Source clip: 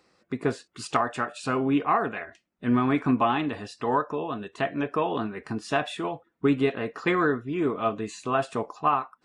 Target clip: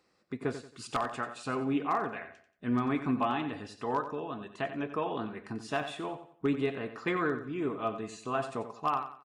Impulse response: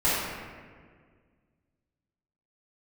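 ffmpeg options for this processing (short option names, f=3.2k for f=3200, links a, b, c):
-af "aeval=exprs='0.237*(abs(mod(val(0)/0.237+3,4)-2)-1)':c=same,aecho=1:1:90|180|270|360:0.282|0.093|0.0307|0.0101,volume=-7dB"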